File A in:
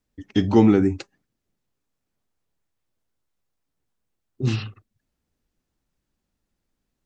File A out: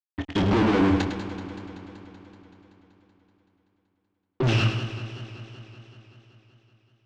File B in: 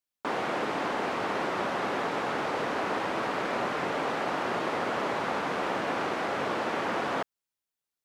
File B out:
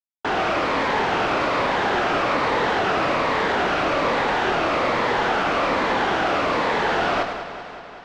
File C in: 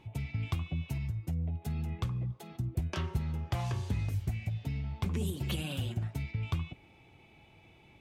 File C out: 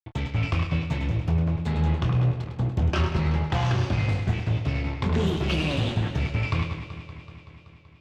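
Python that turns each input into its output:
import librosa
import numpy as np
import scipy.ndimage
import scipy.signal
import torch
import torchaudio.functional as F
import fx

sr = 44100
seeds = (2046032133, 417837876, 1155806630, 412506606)

p1 = fx.spec_ripple(x, sr, per_octave=0.99, drift_hz=-1.2, depth_db=8)
p2 = fx.low_shelf(p1, sr, hz=360.0, db=-5.5)
p3 = fx.fuzz(p2, sr, gain_db=37.0, gate_db=-45.0)
p4 = fx.air_absorb(p3, sr, metres=160.0)
p5 = fx.doubler(p4, sr, ms=25.0, db=-9.5)
p6 = p5 + fx.echo_feedback(p5, sr, ms=104, feedback_pct=46, wet_db=-8.5, dry=0)
p7 = fx.echo_warbled(p6, sr, ms=190, feedback_pct=72, rate_hz=2.8, cents=81, wet_db=-13)
y = F.gain(torch.from_numpy(p7), -6.5).numpy()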